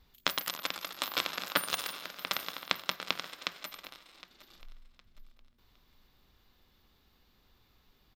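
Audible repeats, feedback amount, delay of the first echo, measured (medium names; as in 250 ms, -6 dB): 2, 31%, 762 ms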